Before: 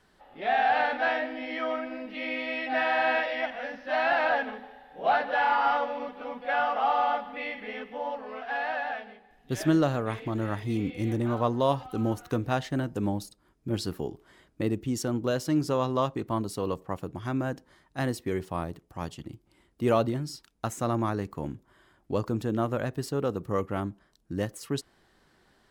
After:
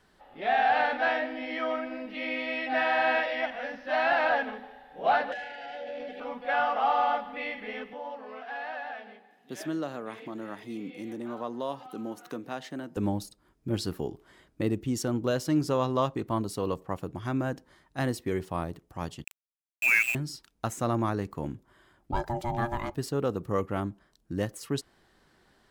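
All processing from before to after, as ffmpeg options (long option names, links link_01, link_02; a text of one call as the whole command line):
ffmpeg -i in.wav -filter_complex "[0:a]asettb=1/sr,asplit=3[link_01][link_02][link_03];[link_01]atrim=end=5.324[link_04];[link_02]atrim=start=5.32:end=6.2,asetpts=PTS-STARTPTS,afade=type=in:duration=0.004:curve=qsin,afade=type=out:start_time=0.876:duration=0.004:curve=qsin,acompressor=threshold=-36dB:ratio=16:attack=3.2:release=140:knee=1:detection=peak,asuperstop=centerf=1100:order=8:qfactor=1.3,asplit=2[link_05][link_06];[link_06]highpass=frequency=720:poles=1,volume=16dB,asoftclip=type=tanh:threshold=-28dB[link_07];[link_05][link_07]amix=inputs=2:normalize=0,lowpass=frequency=3700:poles=1,volume=-6dB[link_08];[link_03]atrim=start=6.196[link_09];[link_04][link_08]acrossfade=duration=0.004:curve1=hsin:curve2=qsin[link_10];[link_10][link_09]acrossfade=duration=0.004:curve1=qsin:curve2=hsin,asettb=1/sr,asplit=3[link_11][link_12][link_13];[link_11]atrim=end=7.934[link_14];[link_12]atrim=start=7.93:end=12.97,asetpts=PTS-STARTPTS,afade=type=in:duration=0.004:curve=qsin,afade=type=out:start_time=5.036:duration=0.004:curve=qsin,acompressor=threshold=-44dB:ratio=1.5:attack=3.2:release=140:knee=1:detection=peak,highpass=frequency=180:width=0.5412,highpass=frequency=180:width=1.3066[link_15];[link_13]atrim=start=12.966[link_16];[link_14][link_15]acrossfade=duration=0.004:curve1=hsin:curve2=qsin[link_17];[link_17][link_16]acrossfade=duration=0.004:curve1=qsin:curve2=hsin,asettb=1/sr,asplit=3[link_18][link_19][link_20];[link_18]atrim=end=19.244[link_21];[link_19]atrim=start=19.24:end=20.15,asetpts=PTS-STARTPTS,afade=type=in:duration=0.004:curve=qsin,afade=type=out:start_time=0.906:duration=0.004:curve=qsin,lowpass=frequency=2400:width_type=q:width=0.5098,lowpass=frequency=2400:width_type=q:width=0.6013,lowpass=frequency=2400:width_type=q:width=0.9,lowpass=frequency=2400:width_type=q:width=2.563,afreqshift=-2800,aeval=exprs='val(0)*gte(abs(val(0)),0.0299)':channel_layout=same[link_22];[link_20]atrim=start=20.146[link_23];[link_21][link_22]acrossfade=duration=0.004:curve1=hsin:curve2=qsin[link_24];[link_24][link_23]acrossfade=duration=0.004:curve1=qsin:curve2=hsin,asettb=1/sr,asplit=3[link_25][link_26][link_27];[link_25]atrim=end=22.124[link_28];[link_26]atrim=start=22.12:end=22.95,asetpts=PTS-STARTPTS,afade=type=in:duration=0.004:curve=qsin,afade=type=out:start_time=0.826:duration=0.004:curve=qsin,aecho=1:1:2.5:0.66,atrim=end_sample=36603,aeval=exprs='val(0)*sin(2*PI*470*n/s)':channel_layout=same[link_29];[link_27]atrim=start=22.946[link_30];[link_28][link_29]acrossfade=duration=0.004:curve1=hsin:curve2=qsin[link_31];[link_31][link_30]acrossfade=duration=0.004:curve1=qsin:curve2=hsin" out.wav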